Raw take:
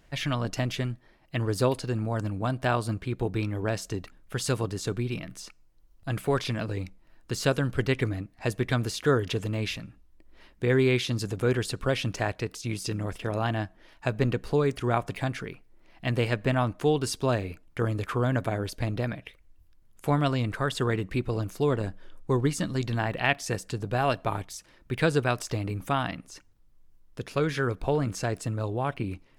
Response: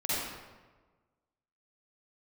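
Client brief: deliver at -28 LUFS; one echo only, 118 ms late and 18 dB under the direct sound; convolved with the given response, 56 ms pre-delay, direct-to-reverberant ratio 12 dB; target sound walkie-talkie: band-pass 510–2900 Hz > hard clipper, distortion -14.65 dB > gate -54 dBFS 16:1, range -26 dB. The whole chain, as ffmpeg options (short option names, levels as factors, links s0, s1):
-filter_complex "[0:a]aecho=1:1:118:0.126,asplit=2[s0][s1];[1:a]atrim=start_sample=2205,adelay=56[s2];[s1][s2]afir=irnorm=-1:irlink=0,volume=0.1[s3];[s0][s3]amix=inputs=2:normalize=0,highpass=510,lowpass=2900,asoftclip=type=hard:threshold=0.0891,agate=range=0.0501:threshold=0.002:ratio=16,volume=2.11"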